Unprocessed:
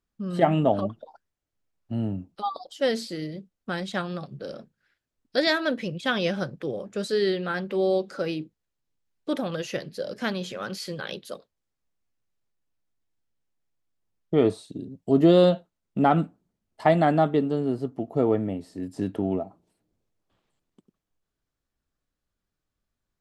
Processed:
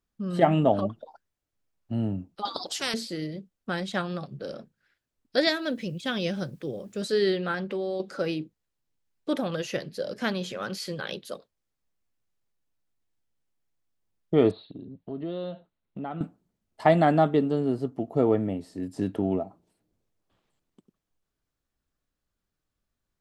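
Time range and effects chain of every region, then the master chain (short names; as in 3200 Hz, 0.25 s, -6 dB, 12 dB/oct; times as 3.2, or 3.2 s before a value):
2.45–2.94 HPF 85 Hz + high shelf 10000 Hz -10 dB + spectral compressor 4:1
5.49–7.02 bell 1100 Hz -7.5 dB 2.6 oct + requantised 12-bit, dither triangular
7.54–8 compressor, threshold -27 dBFS + LPF 9500 Hz
14.51–16.21 steep low-pass 4300 Hz 96 dB/oct + compressor 2.5:1, threshold -39 dBFS
whole clip: dry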